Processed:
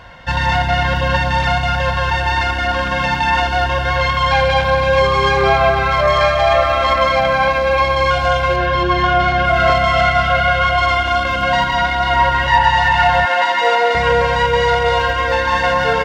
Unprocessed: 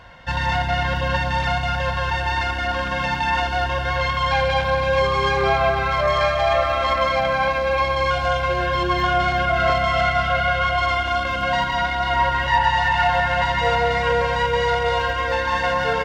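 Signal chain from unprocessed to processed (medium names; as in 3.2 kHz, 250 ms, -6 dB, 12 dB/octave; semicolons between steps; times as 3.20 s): 8.56–9.45 s: distance through air 80 m; 13.25–13.95 s: high-pass 290 Hz 24 dB/octave; trim +5.5 dB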